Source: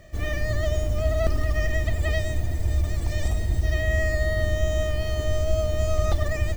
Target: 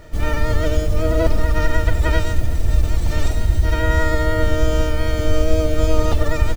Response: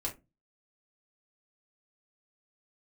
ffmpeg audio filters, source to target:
-filter_complex "[0:a]asplit=2[a][b];[b]bandpass=f=760:t=q:w=0.96:csg=0[c];[1:a]atrim=start_sample=2205,atrim=end_sample=3969,adelay=109[d];[c][d]afir=irnorm=-1:irlink=0,volume=-16.5dB[e];[a][e]amix=inputs=2:normalize=0,asplit=4[f][g][h][i];[g]asetrate=22050,aresample=44100,atempo=2,volume=-3dB[j];[h]asetrate=33038,aresample=44100,atempo=1.33484,volume=-3dB[k];[i]asetrate=88200,aresample=44100,atempo=0.5,volume=-18dB[l];[f][j][k][l]amix=inputs=4:normalize=0,volume=3.5dB"

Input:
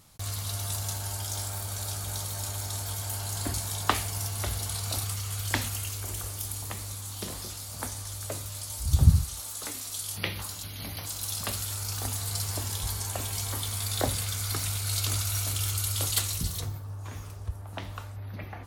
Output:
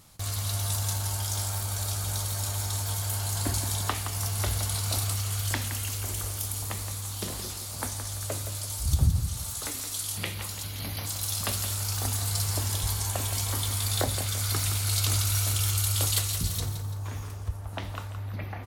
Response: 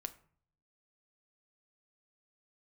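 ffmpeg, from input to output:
-af "alimiter=limit=-15dB:level=0:latency=1:release=387,aecho=1:1:169|338|507|676:0.335|0.137|0.0563|0.0231,volume=2dB"

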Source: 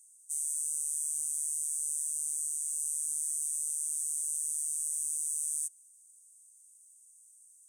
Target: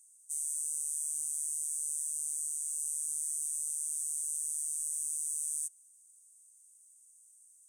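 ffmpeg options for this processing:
-af "equalizer=f=1.5k:t=o:w=1.6:g=5.5,volume=-2dB"

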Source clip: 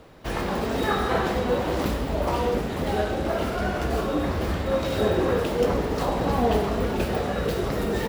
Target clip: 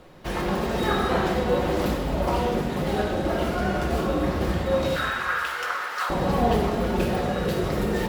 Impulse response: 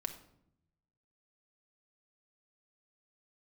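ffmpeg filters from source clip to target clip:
-filter_complex "[0:a]asettb=1/sr,asplit=3[a][b][c];[a]atrim=end=4.964[d];[b]atrim=start=4.96:end=6.1,asetpts=PTS-STARTPTS,afade=t=in:d=0.004:c=qsin,afade=t=out:st=1.136:d=0.004:c=qsin,highpass=f=1.4k:t=q:w=4.1[e];[c]atrim=start=6.096[f];[d][e]acrossfade=d=0.004:c1=hsin:c2=qsin[g];[g][f]acrossfade=d=0.004:c1=qsin:c2=hsin[h];[1:a]atrim=start_sample=2205,asetrate=36603,aresample=44100[i];[h][i]afir=irnorm=-1:irlink=0"

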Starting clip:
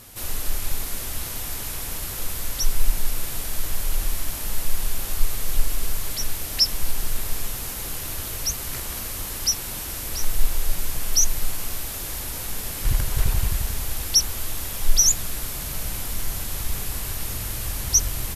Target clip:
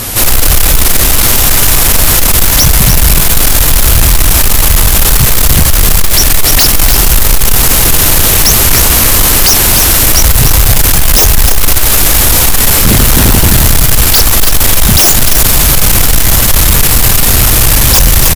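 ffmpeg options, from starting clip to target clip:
-af "aeval=exprs='0.631*sin(PI/2*8.91*val(0)/0.631)':c=same,aecho=1:1:296:0.473,asoftclip=type=tanh:threshold=-6.5dB,volume=5.5dB"

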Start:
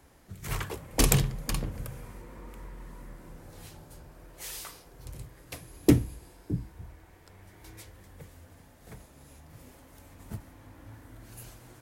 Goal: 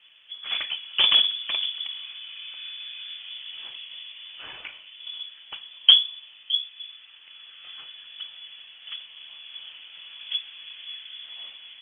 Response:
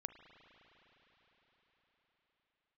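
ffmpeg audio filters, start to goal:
-af "equalizer=f=125:t=o:w=1:g=6,equalizer=f=500:t=o:w=1:g=9,equalizer=f=1k:t=o:w=1:g=6,dynaudnorm=f=620:g=5:m=5dB,lowpass=f=3k:t=q:w=0.5098,lowpass=f=3k:t=q:w=0.6013,lowpass=f=3k:t=q:w=0.9,lowpass=f=3k:t=q:w=2.563,afreqshift=-3500" -ar 48000 -c:a libopus -b:a 32k

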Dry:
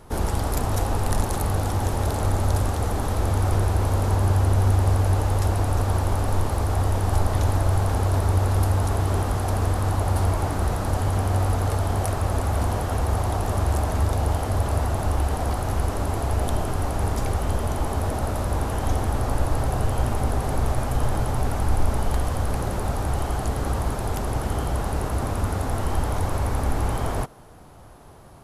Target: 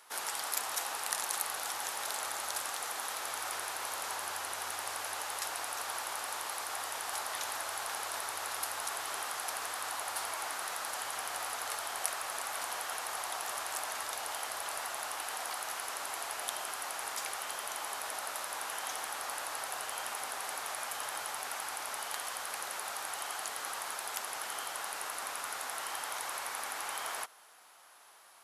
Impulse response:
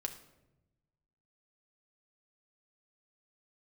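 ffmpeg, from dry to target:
-af "highpass=1.5k"

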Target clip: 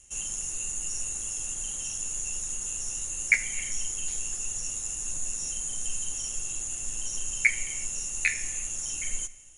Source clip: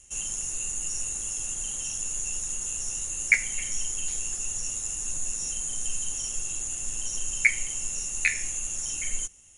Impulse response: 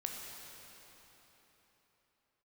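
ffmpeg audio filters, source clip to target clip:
-filter_complex "[0:a]asplit=2[a][b];[1:a]atrim=start_sample=2205,afade=t=out:st=0.36:d=0.01,atrim=end_sample=16317,asetrate=36162,aresample=44100[c];[b][c]afir=irnorm=-1:irlink=0,volume=-13dB[d];[a][d]amix=inputs=2:normalize=0,volume=-3dB"

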